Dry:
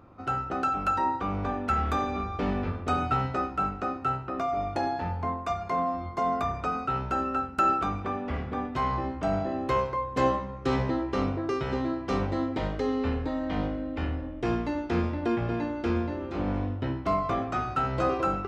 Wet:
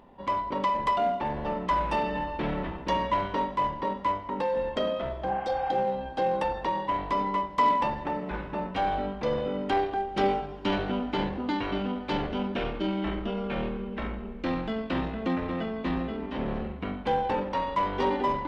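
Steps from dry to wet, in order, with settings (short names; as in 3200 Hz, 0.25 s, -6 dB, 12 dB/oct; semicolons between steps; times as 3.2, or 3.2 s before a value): in parallel at -10.5 dB: hard clip -27.5 dBFS, distortion -9 dB; on the sum: pitch shift -5 st; bell 3100 Hz +8 dB 0.92 oct; spectral repair 5.3–5.75, 720–3100 Hz; bell 90 Hz -12.5 dB 1.6 oct; on a send at -19 dB: reverb RT60 5.5 s, pre-delay 0.117 s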